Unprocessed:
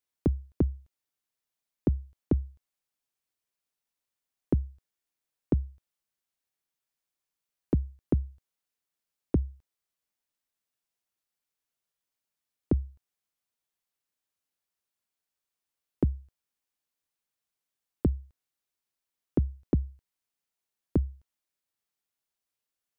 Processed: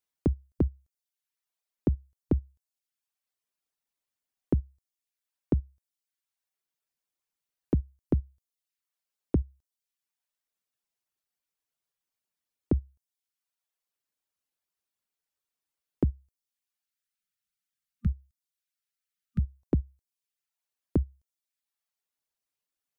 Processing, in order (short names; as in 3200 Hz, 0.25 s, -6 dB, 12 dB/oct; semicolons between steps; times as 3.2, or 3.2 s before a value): spectral gain 16.83–19.58, 230–1200 Hz -27 dB; reverb removal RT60 0.78 s